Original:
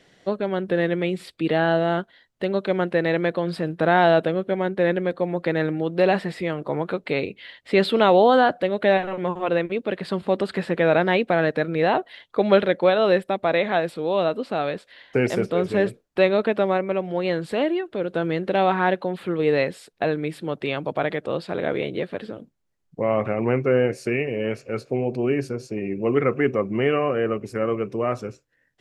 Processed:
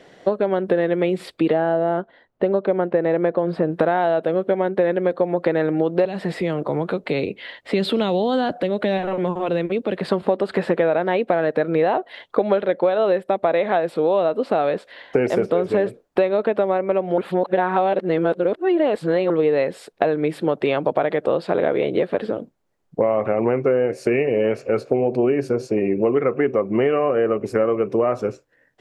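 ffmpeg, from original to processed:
ffmpeg -i in.wav -filter_complex "[0:a]asplit=3[link_01][link_02][link_03];[link_01]afade=type=out:start_time=1.52:duration=0.02[link_04];[link_02]lowpass=frequency=1300:poles=1,afade=type=in:start_time=1.52:duration=0.02,afade=type=out:start_time=3.71:duration=0.02[link_05];[link_03]afade=type=in:start_time=3.71:duration=0.02[link_06];[link_04][link_05][link_06]amix=inputs=3:normalize=0,asettb=1/sr,asplit=3[link_07][link_08][link_09];[link_07]atrim=end=6.054[link_10];[link_08]atrim=start=6.05:end=10.08,asetpts=PTS-STARTPTS,afade=type=in:duration=0.004:curve=qsin,afade=type=out:start_time=4.026:duration=0.004:curve=qsin,acrossover=split=250|3000[link_11][link_12][link_13];[link_12]acompressor=threshold=-34dB:ratio=4:attack=3.2:release=140:knee=2.83:detection=peak[link_14];[link_11][link_14][link_13]amix=inputs=3:normalize=0[link_15];[link_09]atrim=start=10.076[link_16];[link_10][link_15]acrossfade=duration=0.004:curve1=hsin:curve2=qsin[link_17];[link_17][link_16]acrossfade=duration=0.004:curve1=qsin:curve2=hsin,asplit=3[link_18][link_19][link_20];[link_18]atrim=end=17.182[link_21];[link_19]atrim=start=17.178:end=19.302,asetpts=PTS-STARTPTS,areverse[link_22];[link_20]atrim=start=19.298[link_23];[link_21][link_22]acrossfade=duration=0.004:curve1=hsin:curve2=hsin[link_24];[link_24][link_23]acrossfade=duration=0.004:curve1=hsin:curve2=hsin,equalizer=frequency=600:width_type=o:width=2.8:gain=10.5,acompressor=threshold=-17dB:ratio=10,volume=2dB" out.wav

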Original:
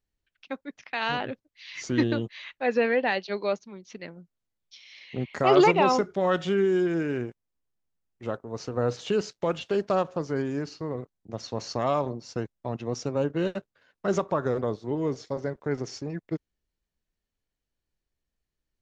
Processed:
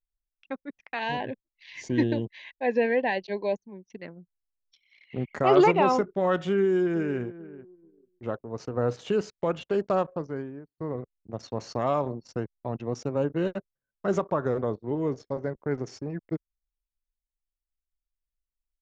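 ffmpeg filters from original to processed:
ffmpeg -i in.wav -filter_complex "[0:a]asettb=1/sr,asplit=3[link_01][link_02][link_03];[link_01]atrim=end=0.994[link_04];[link_02]atrim=start=0.99:end=4,asetpts=PTS-STARTPTS,afade=type=in:duration=0.004:curve=qsin,afade=type=out:start_time=3.006:duration=0.004:curve=qsin,asuperstop=centerf=1300:order=12:qfactor=2.8[link_05];[link_03]atrim=start=3.996[link_06];[link_04][link_05]acrossfade=duration=0.004:curve1=hsin:curve2=qsin[link_07];[link_07][link_06]acrossfade=duration=0.004:curve1=qsin:curve2=hsin,asplit=2[link_08][link_09];[link_09]afade=type=in:start_time=6.51:duration=0.01,afade=type=out:start_time=7.2:duration=0.01,aecho=0:1:440|880|1320:0.158489|0.0475468|0.014264[link_10];[link_08][link_10]amix=inputs=2:normalize=0,asplit=2[link_11][link_12];[link_11]atrim=end=10.78,asetpts=PTS-STARTPTS,afade=type=out:start_time=10.03:duration=0.75[link_13];[link_12]atrim=start=10.78,asetpts=PTS-STARTPTS,afade=type=in:duration=0.004:curve=hsin[link_14];[link_13][link_14]concat=n=2:v=0:a=1,anlmdn=0.0398,equalizer=frequency=4800:width_type=o:width=1.7:gain=-7" out.wav

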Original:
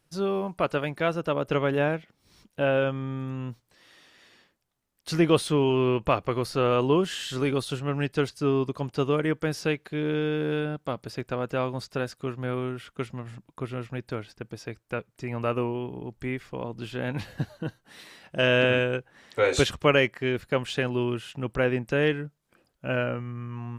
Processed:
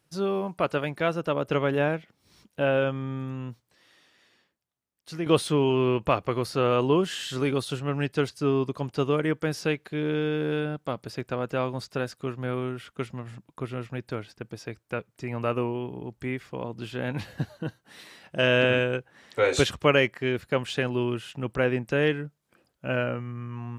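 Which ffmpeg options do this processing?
ffmpeg -i in.wav -filter_complex "[0:a]asplit=2[link_01][link_02];[link_01]atrim=end=5.26,asetpts=PTS-STARTPTS,afade=type=out:start_time=3.18:duration=2.08:curve=qua:silence=0.334965[link_03];[link_02]atrim=start=5.26,asetpts=PTS-STARTPTS,afade=type=in:duration=0.004:curve=hsin:silence=0.334965[link_04];[link_03][link_04]concat=n=2:v=0:a=1,highpass=58" out.wav

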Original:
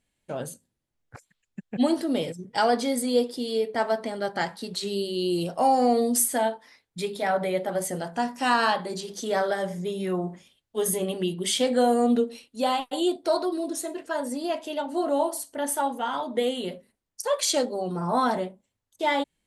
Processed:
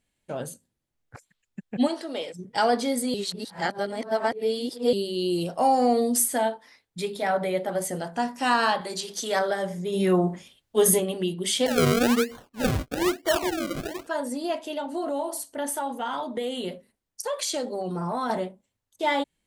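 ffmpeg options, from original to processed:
ffmpeg -i in.wav -filter_complex "[0:a]asplit=3[link_01][link_02][link_03];[link_01]afade=type=out:start_time=1.87:duration=0.02[link_04];[link_02]highpass=520,lowpass=7300,afade=type=in:start_time=1.87:duration=0.02,afade=type=out:start_time=2.33:duration=0.02[link_05];[link_03]afade=type=in:start_time=2.33:duration=0.02[link_06];[link_04][link_05][link_06]amix=inputs=3:normalize=0,asettb=1/sr,asplit=3[link_07][link_08][link_09];[link_07]atrim=end=8.814[link_10];[link_08]atrim=start=8.81:end=9.39,asetpts=PTS-STARTPTS,afade=type=in:duration=0.004:curve=qsin,afade=type=out:start_time=0.576:duration=0.004:curve=qsin,tiltshelf=frequency=640:gain=-5.5[link_11];[link_09]atrim=start=9.386[link_12];[link_10][link_11]acrossfade=duration=0.004:curve1=hsin:curve2=qsin[link_13];[link_13][link_12]acrossfade=duration=0.004:curve1=qsin:curve2=hsin,asplit=3[link_14][link_15][link_16];[link_14]afade=type=out:start_time=9.92:duration=0.02[link_17];[link_15]acontrast=72,afade=type=in:start_time=9.92:duration=0.02,afade=type=out:start_time=10.99:duration=0.02[link_18];[link_16]afade=type=in:start_time=10.99:duration=0.02[link_19];[link_17][link_18][link_19]amix=inputs=3:normalize=0,asettb=1/sr,asplit=3[link_20][link_21][link_22];[link_20]atrim=end=11.664[link_23];[link_21]atrim=start=11.66:end=14.07,asetpts=PTS-STARTPTS,afade=type=in:duration=0.004:curve=qsin,afade=type=out:start_time=2.406:duration=0.004:curve=qsin,acrusher=samples=34:mix=1:aa=0.000001:lfo=1:lforange=34:lforate=1.1[link_24];[link_22]atrim=start=14.066[link_25];[link_23][link_24]acrossfade=duration=0.004:curve1=hsin:curve2=qsin[link_26];[link_26][link_25]acrossfade=duration=0.004:curve1=qsin:curve2=hsin,asettb=1/sr,asplit=3[link_27][link_28][link_29];[link_27]atrim=end=14.654[link_30];[link_28]atrim=start=14.65:end=18.3,asetpts=PTS-STARTPTS,afade=type=in:duration=0.004:curve=qsin,afade=type=out:start_time=3.646:duration=0.004:curve=qsin,acompressor=threshold=-25dB:ratio=4:attack=3.2:release=140:knee=1:detection=peak[link_31];[link_29]atrim=start=18.296[link_32];[link_30][link_31]acrossfade=duration=0.004:curve1=hsin:curve2=qsin[link_33];[link_33][link_32]acrossfade=duration=0.004:curve1=qsin:curve2=hsin,asplit=3[link_34][link_35][link_36];[link_34]atrim=end=3.142[link_37];[link_35]atrim=start=3.138:end=4.932,asetpts=PTS-STARTPTS,areverse[link_38];[link_36]atrim=start=4.928[link_39];[link_37][link_38]acrossfade=duration=0.004:curve1=hsin:curve2=hsin[link_40];[link_40][link_39]acrossfade=duration=0.004:curve1=hsin:curve2=hsin" out.wav

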